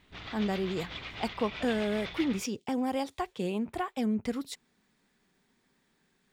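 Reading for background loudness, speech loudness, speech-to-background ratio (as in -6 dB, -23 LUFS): -41.0 LUFS, -33.0 LUFS, 8.0 dB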